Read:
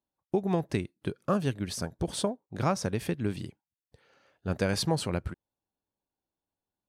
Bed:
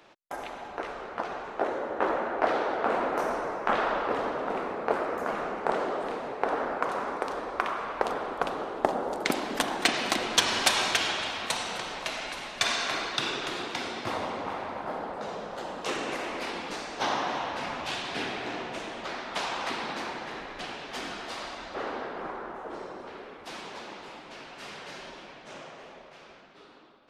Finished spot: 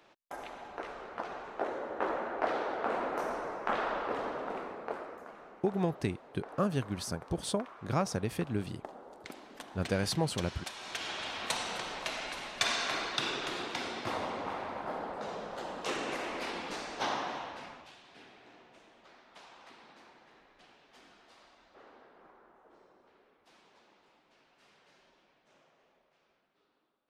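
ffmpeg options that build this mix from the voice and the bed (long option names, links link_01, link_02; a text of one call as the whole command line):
ffmpeg -i stem1.wav -i stem2.wav -filter_complex "[0:a]adelay=5300,volume=-3dB[link_01];[1:a]volume=10dB,afade=type=out:start_time=4.37:duration=0.95:silence=0.211349,afade=type=in:start_time=10.8:duration=0.72:silence=0.158489,afade=type=out:start_time=16.92:duration=1:silence=0.112202[link_02];[link_01][link_02]amix=inputs=2:normalize=0" out.wav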